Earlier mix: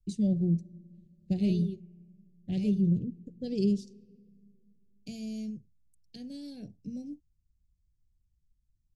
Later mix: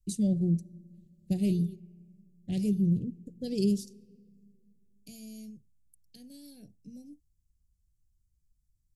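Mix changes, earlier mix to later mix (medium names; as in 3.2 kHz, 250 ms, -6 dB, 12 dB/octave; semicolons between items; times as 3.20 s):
second voice -8.5 dB; master: remove distance through air 110 m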